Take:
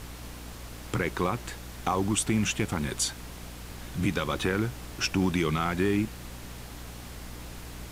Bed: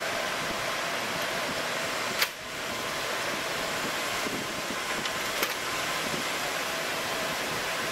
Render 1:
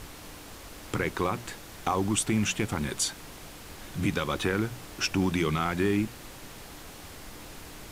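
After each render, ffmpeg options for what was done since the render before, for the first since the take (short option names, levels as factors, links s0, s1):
-af "bandreject=f=60:t=h:w=6,bandreject=f=120:t=h:w=6,bandreject=f=180:t=h:w=6,bandreject=f=240:t=h:w=6"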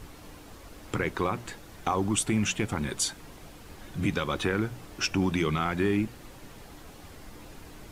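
-af "afftdn=nr=7:nf=-46"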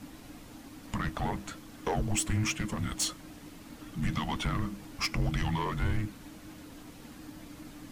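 -af "aeval=exprs='(tanh(11.2*val(0)+0.4)-tanh(0.4))/11.2':c=same,afreqshift=-320"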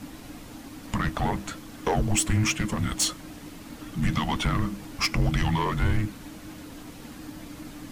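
-af "volume=2"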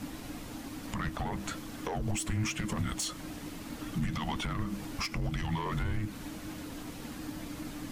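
-af "acompressor=threshold=0.0501:ratio=3,alimiter=limit=0.0631:level=0:latency=1:release=100"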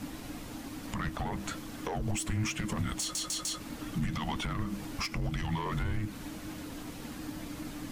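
-filter_complex "[0:a]asplit=5[s0][s1][s2][s3][s4];[s0]atrim=end=3.152[s5];[s1]atrim=start=2.998:end=3.152[s6];[s2]atrim=start=2.998:end=3.152[s7];[s3]atrim=start=2.998:end=3.152[s8];[s4]atrim=start=3.598[s9];[s5][s6]acrossfade=d=0.004:c1=hsin:c2=hsin[s10];[s10][s7]acrossfade=d=0.004:c1=hsin:c2=hsin[s11];[s11][s8]acrossfade=d=0.004:c1=hsin:c2=hsin[s12];[s12][s9]acrossfade=d=0.004:c1=hsin:c2=hsin"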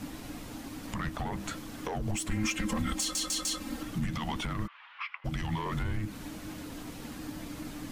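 -filter_complex "[0:a]asettb=1/sr,asplit=3[s0][s1][s2];[s0]atrim=end=2.314[s3];[s1]atrim=start=2.31:end=3.83,asetpts=PTS-STARTPTS,afade=t=in:d=0.004:c=qsin,afade=t=out:st=1.516:d=0.004:c=qsin,aecho=1:1:3.8:0.92,atrim=end_sample=67032[s4];[s2]atrim=start=3.826[s5];[s3][s4]acrossfade=d=0.004:c1=hsin:c2=qsin[s6];[s6][s5]acrossfade=d=0.004:c1=qsin:c2=hsin,asplit=3[s7][s8][s9];[s7]afade=t=out:st=4.66:d=0.02[s10];[s8]asuperpass=centerf=1800:order=8:qfactor=0.79,afade=t=in:st=4.66:d=0.02,afade=t=out:st=5.24:d=0.02[s11];[s9]afade=t=in:st=5.24:d=0.02[s12];[s10][s11][s12]amix=inputs=3:normalize=0"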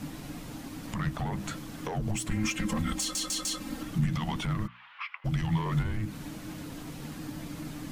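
-af "equalizer=f=150:t=o:w=0.5:g=9.5,bandreject=f=60:t=h:w=6,bandreject=f=120:t=h:w=6,bandreject=f=180:t=h:w=6,bandreject=f=240:t=h:w=6"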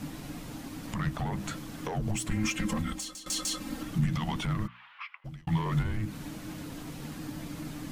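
-filter_complex "[0:a]asplit=3[s0][s1][s2];[s0]atrim=end=3.26,asetpts=PTS-STARTPTS,afade=t=out:st=2.7:d=0.56:silence=0.11885[s3];[s1]atrim=start=3.26:end=5.47,asetpts=PTS-STARTPTS,afade=t=in:d=0.004:c=hsin:silence=0.11885,afade=t=out:st=1.53:d=0.68[s4];[s2]atrim=start=5.47,asetpts=PTS-STARTPTS,afade=t=in:d=0.004:c=hsin[s5];[s3][s4][s5]concat=n=3:v=0:a=1"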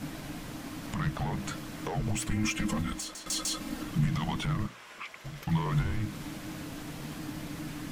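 -filter_complex "[1:a]volume=0.1[s0];[0:a][s0]amix=inputs=2:normalize=0"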